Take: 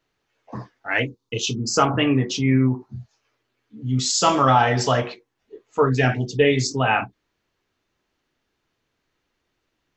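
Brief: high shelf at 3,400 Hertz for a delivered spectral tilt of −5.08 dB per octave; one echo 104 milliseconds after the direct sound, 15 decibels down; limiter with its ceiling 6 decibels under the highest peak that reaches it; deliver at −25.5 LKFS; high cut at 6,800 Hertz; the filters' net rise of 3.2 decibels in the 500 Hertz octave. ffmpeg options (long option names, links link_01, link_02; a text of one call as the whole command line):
ffmpeg -i in.wav -af "lowpass=6800,equalizer=frequency=500:width_type=o:gain=4,highshelf=frequency=3400:gain=-4.5,alimiter=limit=-8dB:level=0:latency=1,aecho=1:1:104:0.178,volume=-4.5dB" out.wav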